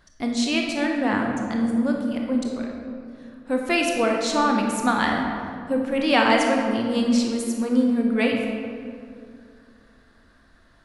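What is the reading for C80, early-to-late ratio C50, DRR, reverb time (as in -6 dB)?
3.5 dB, 2.0 dB, 0.5 dB, 2.4 s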